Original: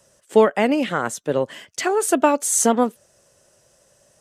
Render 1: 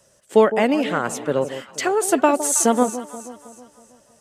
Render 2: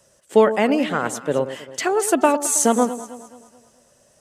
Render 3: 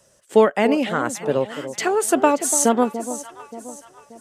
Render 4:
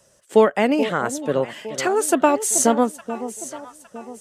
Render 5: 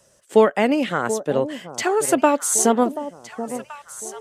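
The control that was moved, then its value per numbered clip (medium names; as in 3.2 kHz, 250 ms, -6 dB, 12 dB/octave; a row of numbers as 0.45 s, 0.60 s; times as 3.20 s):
echo whose repeats swap between lows and highs, time: 160 ms, 107 ms, 290 ms, 430 ms, 732 ms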